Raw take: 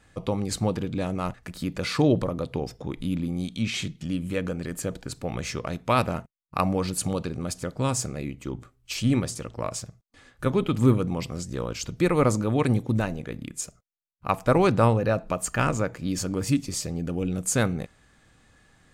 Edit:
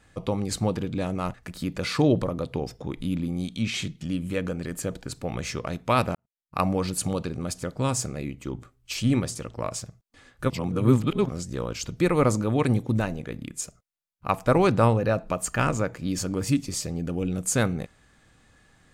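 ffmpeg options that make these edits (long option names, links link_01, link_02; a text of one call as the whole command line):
ffmpeg -i in.wav -filter_complex "[0:a]asplit=4[link_01][link_02][link_03][link_04];[link_01]atrim=end=6.15,asetpts=PTS-STARTPTS,afade=type=out:start_time=6.146:duration=0.004:curve=hsin[link_05];[link_02]atrim=start=6.15:end=10.502,asetpts=PTS-STARTPTS,afade=type=in:duration=0.46:curve=qua[link_06];[link_03]atrim=start=10.498:end=11.292,asetpts=PTS-STARTPTS,areverse[link_07];[link_04]atrim=start=11.288[link_08];[link_05][link_06]concat=n=2:v=0:a=1[link_09];[link_09][link_07]acrossfade=duration=0.004:curve1=hsin:curve2=hsin[link_10];[link_10][link_08]acrossfade=duration=0.004:curve1=hsin:curve2=hsin" out.wav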